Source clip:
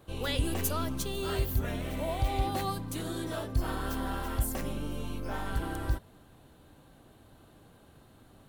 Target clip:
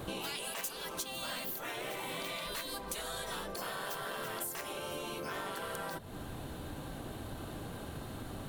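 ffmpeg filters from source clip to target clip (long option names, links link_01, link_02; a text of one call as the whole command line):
ffmpeg -i in.wav -af "afftfilt=real='re*lt(hypot(re,im),0.0501)':imag='im*lt(hypot(re,im),0.0501)':win_size=1024:overlap=0.75,acompressor=threshold=-53dB:ratio=6,aeval=exprs='0.0133*(cos(1*acos(clip(val(0)/0.0133,-1,1)))-cos(1*PI/2))+0.00168*(cos(6*acos(clip(val(0)/0.0133,-1,1)))-cos(6*PI/2))+0.00119*(cos(8*acos(clip(val(0)/0.0133,-1,1)))-cos(8*PI/2))':channel_layout=same,volume=15dB" out.wav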